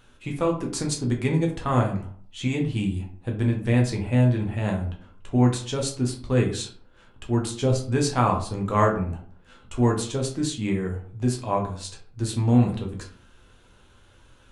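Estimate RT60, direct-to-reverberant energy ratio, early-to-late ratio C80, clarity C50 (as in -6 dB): 0.50 s, 0.0 dB, 13.0 dB, 8.5 dB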